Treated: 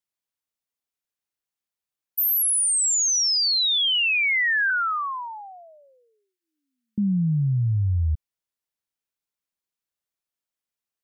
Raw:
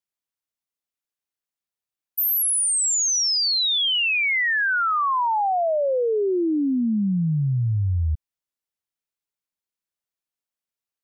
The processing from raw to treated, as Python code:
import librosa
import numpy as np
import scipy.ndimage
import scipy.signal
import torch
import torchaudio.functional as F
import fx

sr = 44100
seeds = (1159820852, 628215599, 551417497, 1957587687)

y = fx.cheby2_highpass(x, sr, hz=380.0, order=4, stop_db=60, at=(4.7, 6.98))